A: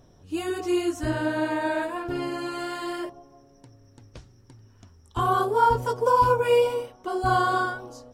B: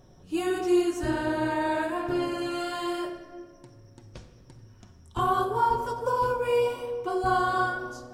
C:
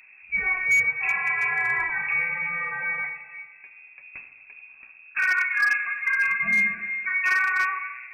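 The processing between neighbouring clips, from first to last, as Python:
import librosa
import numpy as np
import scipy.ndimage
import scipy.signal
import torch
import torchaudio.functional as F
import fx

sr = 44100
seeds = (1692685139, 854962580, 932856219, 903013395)

y1 = fx.rider(x, sr, range_db=3, speed_s=0.5)
y1 = fx.room_shoebox(y1, sr, seeds[0], volume_m3=1800.0, walls='mixed', distance_m=1.0)
y1 = F.gain(torch.from_numpy(y1), -3.5).numpy()
y2 = fx.freq_invert(y1, sr, carrier_hz=2600)
y2 = np.clip(y2, -10.0 ** (-18.5 / 20.0), 10.0 ** (-18.5 / 20.0))
y2 = F.gain(torch.from_numpy(y2), 2.5).numpy()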